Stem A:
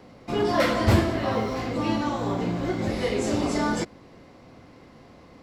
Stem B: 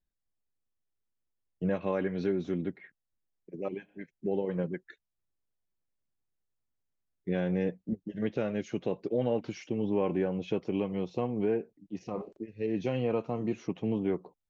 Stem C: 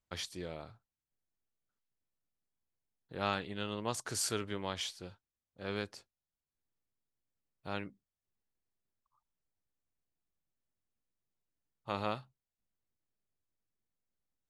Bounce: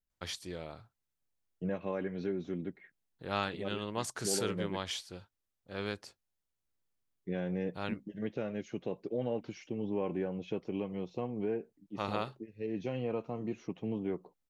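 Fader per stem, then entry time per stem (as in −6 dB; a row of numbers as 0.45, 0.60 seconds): muted, −5.5 dB, +0.5 dB; muted, 0.00 s, 0.10 s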